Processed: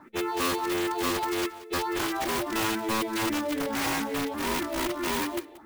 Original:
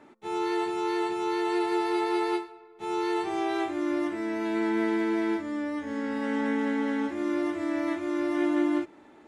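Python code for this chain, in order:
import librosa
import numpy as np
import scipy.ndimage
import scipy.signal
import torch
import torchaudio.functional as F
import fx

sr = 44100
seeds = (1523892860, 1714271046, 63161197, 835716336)

p1 = scipy.signal.sosfilt(scipy.signal.butter(4, 4500.0, 'lowpass', fs=sr, output='sos'), x)
p2 = fx.hum_notches(p1, sr, base_hz=50, count=3)
p3 = fx.over_compress(p2, sr, threshold_db=-31.0, ratio=-0.5)
p4 = p2 + F.gain(torch.from_numpy(p3), 0.5).numpy()
p5 = fx.phaser_stages(p4, sr, stages=4, low_hz=160.0, high_hz=1100.0, hz=0.98, feedback_pct=20)
p6 = fx.mod_noise(p5, sr, seeds[0], snr_db=25)
p7 = (np.mod(10.0 ** (21.5 / 20.0) * p6 + 1.0, 2.0) - 1.0) / 10.0 ** (21.5 / 20.0)
p8 = fx.stretch_vocoder(p7, sr, factor=0.61)
y = p8 + fx.echo_single(p8, sr, ms=180, db=-18.0, dry=0)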